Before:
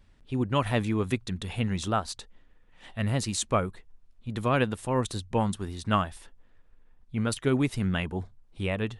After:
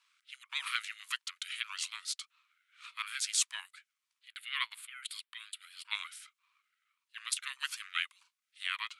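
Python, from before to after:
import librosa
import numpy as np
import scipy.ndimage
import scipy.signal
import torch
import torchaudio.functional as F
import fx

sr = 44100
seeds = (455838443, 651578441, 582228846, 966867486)

y = scipy.signal.sosfilt(scipy.signal.cheby1(8, 1.0, 1600.0, 'highpass', fs=sr, output='sos'), x)
y = fx.fixed_phaser(y, sr, hz=2600.0, stages=4, at=(4.28, 5.95))
y = fx.ring_lfo(y, sr, carrier_hz=480.0, swing_pct=35, hz=1.7)
y = y * librosa.db_to_amplitude(4.5)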